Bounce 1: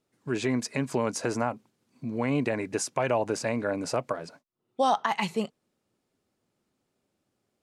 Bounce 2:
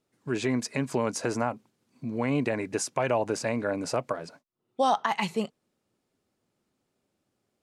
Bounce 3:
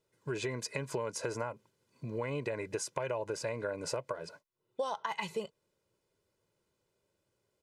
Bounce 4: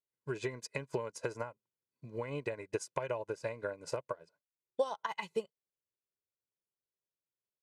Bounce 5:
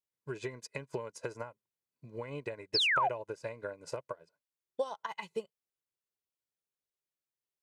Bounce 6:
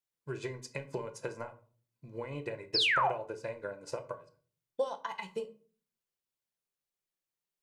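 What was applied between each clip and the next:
nothing audible
comb 2 ms, depth 68%; compressor 4:1, threshold -30 dBFS, peak gain reduction 11 dB; gain -3 dB
upward expander 2.5:1, over -50 dBFS; gain +5 dB
painted sound fall, 2.74–3.09, 650–5500 Hz -26 dBFS; gain -2 dB
shoebox room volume 330 m³, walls furnished, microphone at 0.79 m

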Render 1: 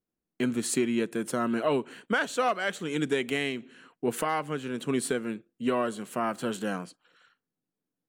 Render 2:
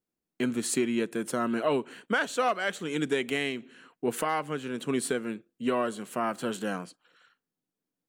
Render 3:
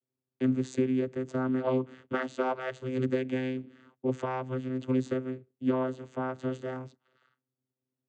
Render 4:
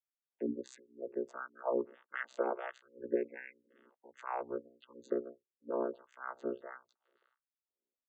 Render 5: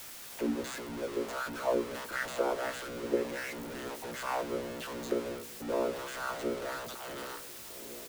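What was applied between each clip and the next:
low shelf 120 Hz -5 dB
vocoder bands 16, saw 129 Hz
spectral gate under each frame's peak -25 dB strong; LFO high-pass sine 1.5 Hz 370–1800 Hz; ring modulator 30 Hz; gain -5.5 dB
zero-crossing step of -36.5 dBFS; doubler 18 ms -12 dB; dark delay 0.726 s, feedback 72%, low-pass 530 Hz, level -15 dB; gain +1.5 dB

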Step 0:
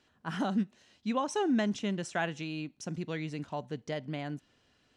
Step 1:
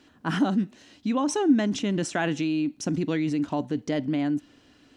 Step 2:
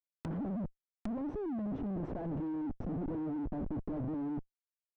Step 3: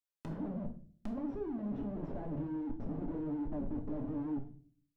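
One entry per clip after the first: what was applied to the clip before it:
bell 290 Hz +12.5 dB 0.41 oct; in parallel at 0 dB: negative-ratio compressor -34 dBFS, ratio -1
Schmitt trigger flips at -36.5 dBFS; treble ducked by the level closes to 580 Hz, closed at -30.5 dBFS; gain -8.5 dB
on a send at -2.5 dB: reverb RT60 0.45 s, pre-delay 3 ms; on the sum: record warp 78 rpm, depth 100 cents; gain -4.5 dB

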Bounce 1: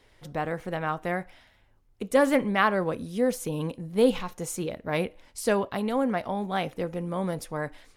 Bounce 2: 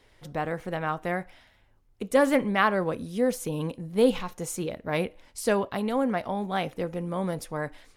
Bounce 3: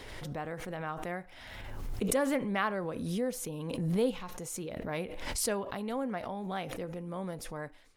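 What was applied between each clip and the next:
nothing audible
backwards sustainer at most 31 dB/s; gain -9 dB

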